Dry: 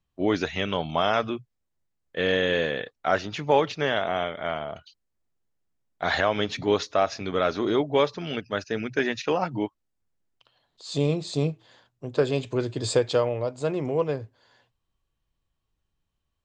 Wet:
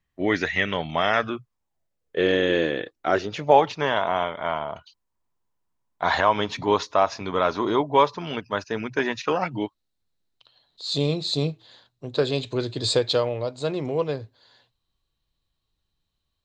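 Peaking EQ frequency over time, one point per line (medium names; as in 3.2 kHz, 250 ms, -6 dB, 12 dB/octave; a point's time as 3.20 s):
peaking EQ +14 dB 0.38 oct
1.13 s 1.9 kHz
2.30 s 330 Hz
3.10 s 330 Hz
3.74 s 980 Hz
9.23 s 980 Hz
9.64 s 4 kHz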